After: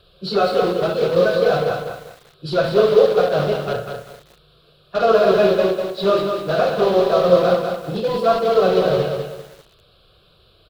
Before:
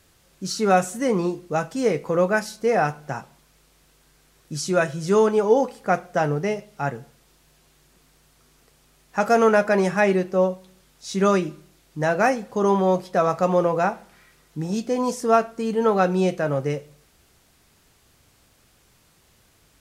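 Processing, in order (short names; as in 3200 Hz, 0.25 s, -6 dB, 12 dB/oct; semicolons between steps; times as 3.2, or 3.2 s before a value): feedback echo 67 ms, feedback 57%, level -4.5 dB; plain phase-vocoder stretch 0.54×; high shelf 3300 Hz +5 dB; fixed phaser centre 1300 Hz, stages 8; in parallel at -6 dB: wrapped overs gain 27 dB; on the sum: EQ curve 120 Hz 0 dB, 260 Hz +5 dB, 800 Hz +2 dB, 2300 Hz -6 dB, 4000 Hz +4 dB, 7800 Hz -21 dB; lo-fi delay 0.197 s, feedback 35%, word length 8-bit, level -5 dB; gain +5 dB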